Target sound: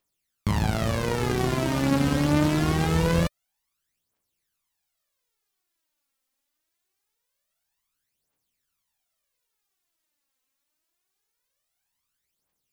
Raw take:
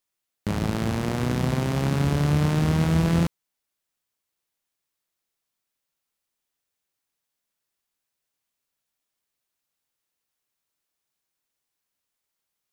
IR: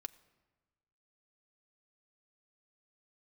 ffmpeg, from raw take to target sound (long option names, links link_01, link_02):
-af "aphaser=in_gain=1:out_gain=1:delay=3.9:decay=0.67:speed=0.24:type=triangular"